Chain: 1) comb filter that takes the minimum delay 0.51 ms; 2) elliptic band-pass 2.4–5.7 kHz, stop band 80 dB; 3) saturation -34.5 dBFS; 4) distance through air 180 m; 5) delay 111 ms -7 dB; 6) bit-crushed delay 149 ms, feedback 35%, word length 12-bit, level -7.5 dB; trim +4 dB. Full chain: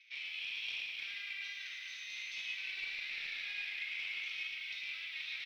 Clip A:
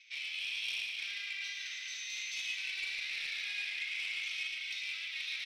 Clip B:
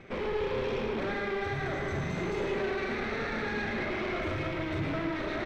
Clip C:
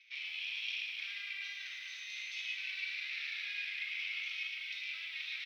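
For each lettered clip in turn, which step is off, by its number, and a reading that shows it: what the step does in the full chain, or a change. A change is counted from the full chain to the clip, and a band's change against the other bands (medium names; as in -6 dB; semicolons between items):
4, 8 kHz band +9.5 dB; 2, 1 kHz band +27.0 dB; 3, distortion -21 dB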